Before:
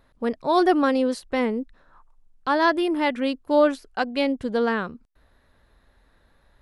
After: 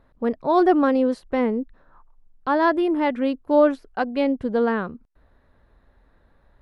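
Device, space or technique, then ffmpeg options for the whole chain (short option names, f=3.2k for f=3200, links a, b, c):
through cloth: -af "highshelf=f=2.6k:g=-15,volume=2.5dB"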